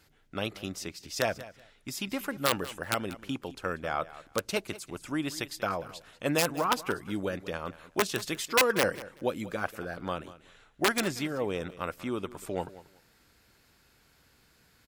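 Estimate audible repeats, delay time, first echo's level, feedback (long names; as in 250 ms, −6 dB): 2, 189 ms, −17.0 dB, 19%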